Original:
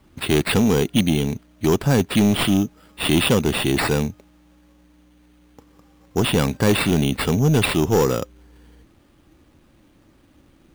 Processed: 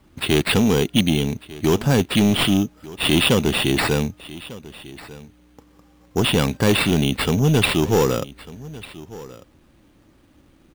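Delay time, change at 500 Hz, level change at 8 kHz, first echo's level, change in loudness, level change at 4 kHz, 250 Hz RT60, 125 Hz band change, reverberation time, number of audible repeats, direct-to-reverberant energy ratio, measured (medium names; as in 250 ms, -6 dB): 1197 ms, 0.0 dB, +0.5 dB, -19.0 dB, +0.5 dB, +3.5 dB, no reverb, 0.0 dB, no reverb, 1, no reverb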